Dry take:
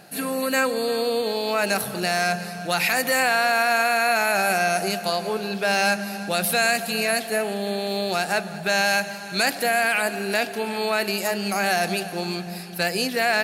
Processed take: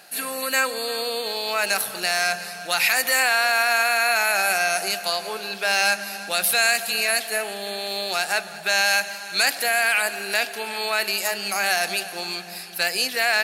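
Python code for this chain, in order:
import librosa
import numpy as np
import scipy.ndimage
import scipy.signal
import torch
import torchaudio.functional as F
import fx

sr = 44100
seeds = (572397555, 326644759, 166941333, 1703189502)

y = fx.highpass(x, sr, hz=1400.0, slope=6)
y = y * 10.0 ** (4.0 / 20.0)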